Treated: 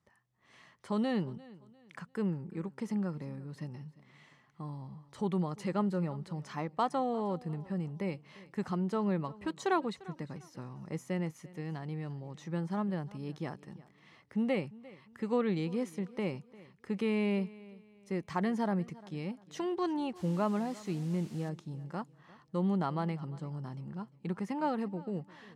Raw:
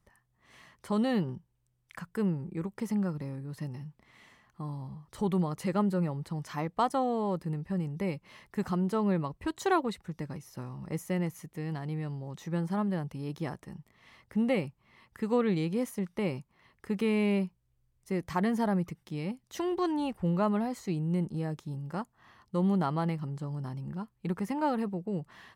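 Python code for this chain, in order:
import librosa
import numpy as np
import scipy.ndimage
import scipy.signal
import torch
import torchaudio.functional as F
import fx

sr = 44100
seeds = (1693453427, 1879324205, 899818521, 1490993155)

p1 = fx.dmg_noise_colour(x, sr, seeds[0], colour='white', level_db=-52.0, at=(20.15, 21.48), fade=0.02)
p2 = fx.bandpass_edges(p1, sr, low_hz=110.0, high_hz=7700.0)
p3 = p2 + fx.echo_feedback(p2, sr, ms=349, feedback_pct=33, wet_db=-20.5, dry=0)
y = p3 * 10.0 ** (-3.0 / 20.0)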